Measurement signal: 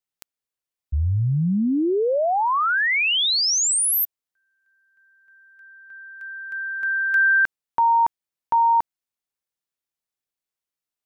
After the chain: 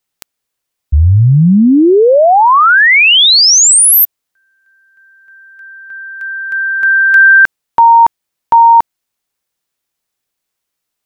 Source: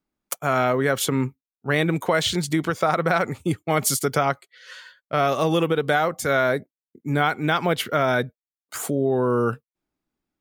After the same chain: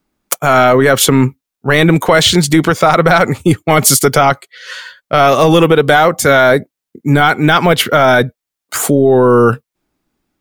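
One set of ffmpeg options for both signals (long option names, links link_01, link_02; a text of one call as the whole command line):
ffmpeg -i in.wav -af "apsyclip=15.5dB,volume=-1.5dB" out.wav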